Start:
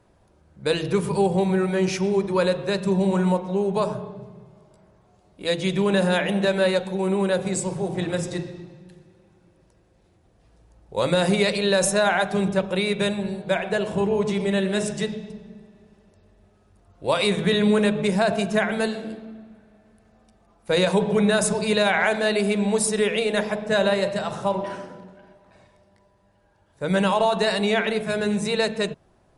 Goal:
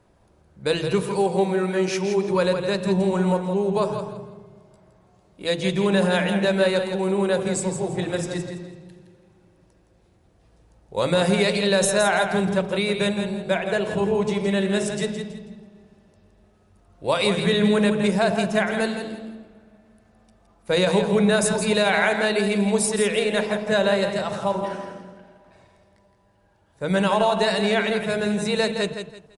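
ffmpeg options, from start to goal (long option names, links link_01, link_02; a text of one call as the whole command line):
ffmpeg -i in.wav -filter_complex "[0:a]asettb=1/sr,asplit=3[link_01][link_02][link_03];[link_01]atrim=end=1.024[link_04];[link_02]atrim=start=1.02:end=2.29,asetpts=PTS-STARTPTS,afade=type=in:duration=0.004:curve=qsin,afade=type=out:start_time=1.266:duration=0.004:curve=qsin,highpass=220[link_05];[link_03]atrim=start=2.286[link_06];[link_04][link_05]acrossfade=duration=0.004:curve1=hsin:curve2=qsin[link_07];[link_07][link_06]acrossfade=duration=0.004:curve1=qsin:curve2=hsin,asplit=2[link_08][link_09];[link_09]aecho=0:1:166|332|498:0.398|0.107|0.029[link_10];[link_08][link_10]amix=inputs=2:normalize=0" out.wav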